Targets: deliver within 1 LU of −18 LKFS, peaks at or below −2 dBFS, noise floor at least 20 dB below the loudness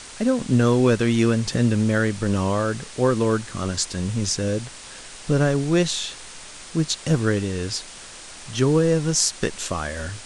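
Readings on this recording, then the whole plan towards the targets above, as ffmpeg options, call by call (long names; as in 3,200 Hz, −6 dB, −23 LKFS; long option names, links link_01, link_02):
background noise floor −41 dBFS; target noise floor −42 dBFS; integrated loudness −22.0 LKFS; sample peak −1.5 dBFS; target loudness −18.0 LKFS
→ -af "afftdn=noise_reduction=6:noise_floor=-41"
-af "volume=4dB,alimiter=limit=-2dB:level=0:latency=1"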